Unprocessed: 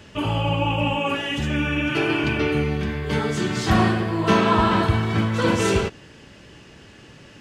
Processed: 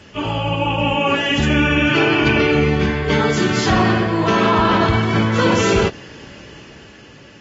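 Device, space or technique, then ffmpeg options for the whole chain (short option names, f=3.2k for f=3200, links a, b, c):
low-bitrate web radio: -af "lowshelf=f=180:g=-4.5,bandreject=f=3.8k:w=27,dynaudnorm=f=260:g=9:m=8dB,alimiter=limit=-10dB:level=0:latency=1:release=26,volume=2.5dB" -ar 32000 -c:a aac -b:a 24k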